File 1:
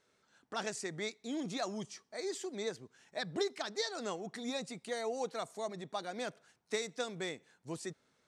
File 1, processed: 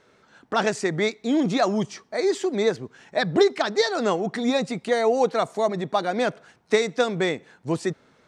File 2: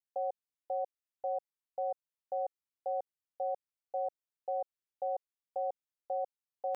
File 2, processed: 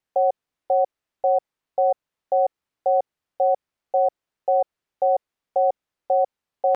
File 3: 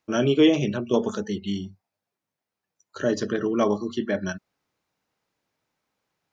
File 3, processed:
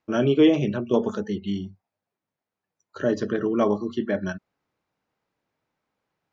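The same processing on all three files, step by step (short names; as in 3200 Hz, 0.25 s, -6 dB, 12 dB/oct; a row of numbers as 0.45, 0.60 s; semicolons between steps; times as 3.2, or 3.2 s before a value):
LPF 2200 Hz 6 dB/oct; match loudness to -24 LUFS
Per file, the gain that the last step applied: +17.0, +16.0, +1.0 dB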